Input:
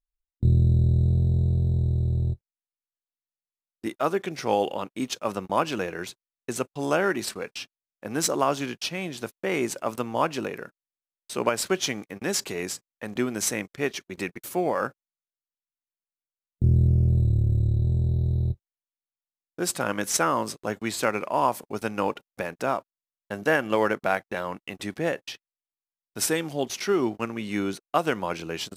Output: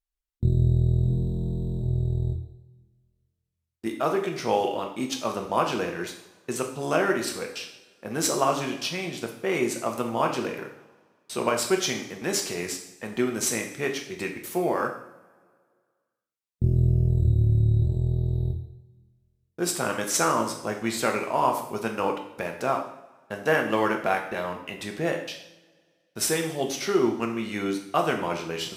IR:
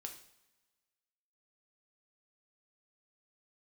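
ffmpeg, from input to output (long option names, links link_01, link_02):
-filter_complex "[1:a]atrim=start_sample=2205,asetrate=37044,aresample=44100[link_01];[0:a][link_01]afir=irnorm=-1:irlink=0,volume=3.5dB"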